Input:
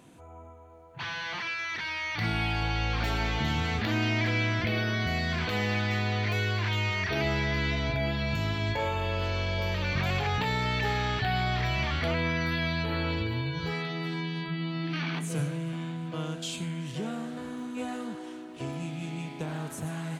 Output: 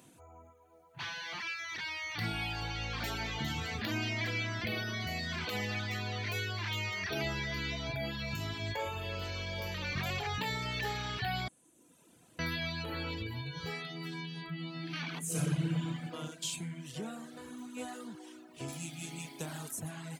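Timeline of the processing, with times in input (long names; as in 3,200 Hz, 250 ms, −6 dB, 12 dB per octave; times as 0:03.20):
0:11.48–0:12.39: fill with room tone
0:15.24–0:16.03: thrown reverb, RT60 2.3 s, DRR −5 dB
0:18.68–0:19.71: high-shelf EQ 4,200 Hz +10.5 dB
whole clip: reverb reduction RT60 0.99 s; high-pass filter 60 Hz; high-shelf EQ 5,500 Hz +12 dB; level −5.5 dB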